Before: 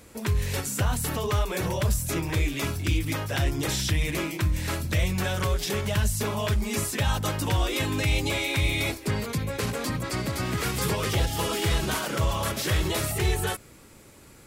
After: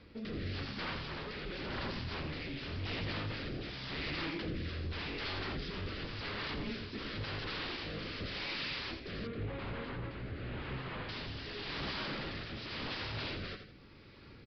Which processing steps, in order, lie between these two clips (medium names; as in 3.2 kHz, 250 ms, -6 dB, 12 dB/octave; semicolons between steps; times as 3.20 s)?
wavefolder -30 dBFS; peaking EQ 690 Hz -5.5 dB 0.88 oct; on a send: feedback delay 84 ms, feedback 36%, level -7.5 dB; on the sum: rotary cabinet horn 0.9 Hz; 9.27–11.09 s: distance through air 400 m; resampled via 11.025 kHz; trim -2 dB